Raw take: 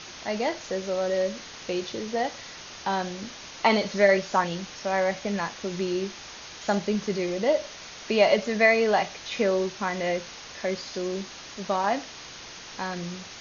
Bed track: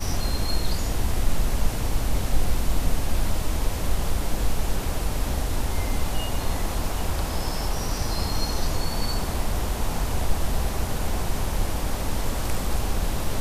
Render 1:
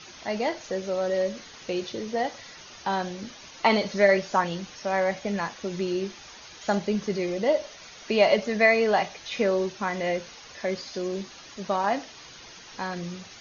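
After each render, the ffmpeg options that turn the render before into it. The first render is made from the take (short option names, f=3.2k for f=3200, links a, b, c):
-af "afftdn=nr=8:nf=-43"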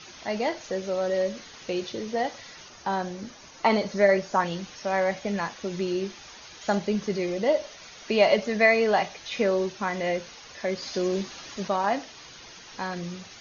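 -filter_complex "[0:a]asettb=1/sr,asplit=3[a][b][c];[a]atrim=end=2.684[d];[b]atrim=start=2.68:end=4.4,asetpts=PTS-STARTPTS,afade=t=in:d=0.004:c=qsin,afade=t=out:st=1.716:d=0.004:c=qsin,equalizer=f=3.2k:w=0.95:g=-5.5[e];[c]atrim=start=4.396[f];[d][e]acrossfade=d=0.004:c1=hsin:c2=qsin[g];[g][f]acrossfade=d=0.004:c1=qsin:c2=hsin,asplit=3[h][i][j];[h]atrim=end=10.822[k];[i]atrim=start=10.818:end=11.682,asetpts=PTS-STARTPTS,volume=4dB[l];[j]atrim=start=11.678[m];[k][l]acrossfade=d=0.004:c1=hsin:c2=hsin[n];[n][m]acrossfade=d=0.004:c1=hsin:c2=hsin"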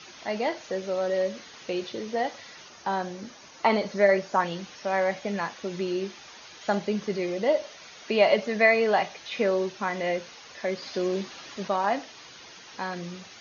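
-filter_complex "[0:a]highpass=f=170:p=1,acrossover=split=4800[a][b];[b]acompressor=threshold=-52dB:ratio=4:attack=1:release=60[c];[a][c]amix=inputs=2:normalize=0"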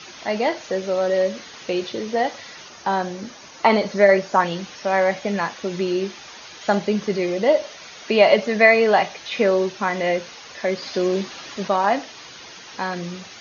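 -af "volume=6.5dB,alimiter=limit=-2dB:level=0:latency=1"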